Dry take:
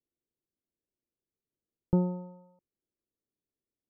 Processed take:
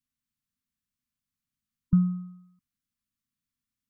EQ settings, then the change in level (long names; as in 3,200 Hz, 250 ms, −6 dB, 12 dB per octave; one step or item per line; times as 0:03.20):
linear-phase brick-wall band-stop 280–1,000 Hz
+5.0 dB